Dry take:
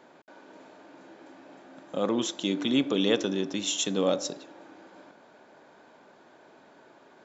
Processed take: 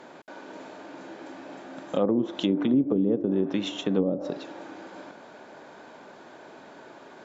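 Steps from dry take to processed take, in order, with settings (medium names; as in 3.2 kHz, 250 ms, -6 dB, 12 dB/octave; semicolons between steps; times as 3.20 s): low-pass that closes with the level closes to 340 Hz, closed at -21.5 dBFS; in parallel at -2 dB: compression, threshold -37 dBFS, peak gain reduction 14 dB; on the sum: trim +3 dB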